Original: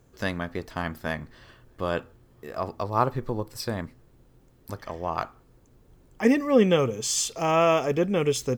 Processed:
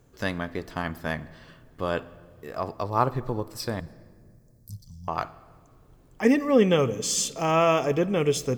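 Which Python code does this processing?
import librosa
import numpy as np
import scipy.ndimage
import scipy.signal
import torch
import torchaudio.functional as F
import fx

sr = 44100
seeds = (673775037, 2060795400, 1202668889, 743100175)

y = fx.cheby2_bandstop(x, sr, low_hz=320.0, high_hz=2700.0, order=4, stop_db=40, at=(3.8, 5.08))
y = fx.room_shoebox(y, sr, seeds[0], volume_m3=3600.0, walls='mixed', distance_m=0.33)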